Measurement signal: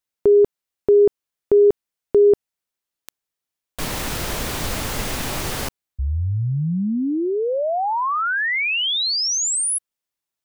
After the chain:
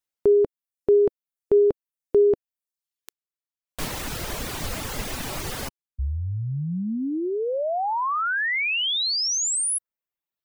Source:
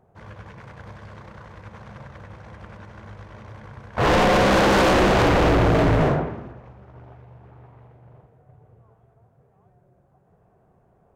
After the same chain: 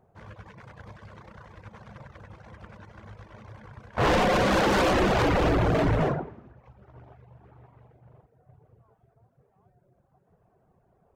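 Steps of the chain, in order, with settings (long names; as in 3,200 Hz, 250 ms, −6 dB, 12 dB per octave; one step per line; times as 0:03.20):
reverb reduction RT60 0.84 s
level −3 dB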